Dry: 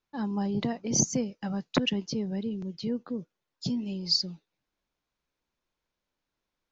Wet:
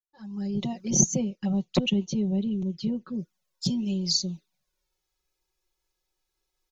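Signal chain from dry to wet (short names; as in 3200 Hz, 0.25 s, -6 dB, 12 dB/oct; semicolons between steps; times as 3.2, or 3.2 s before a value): opening faded in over 0.98 s; low shelf 110 Hz +3.5 dB; comb 5.4 ms, depth 84%; envelope flanger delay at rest 2.4 ms, full sweep at -26 dBFS; tone controls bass +1 dB, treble +12 dB, from 0.93 s treble +3 dB, from 3.13 s treble +11 dB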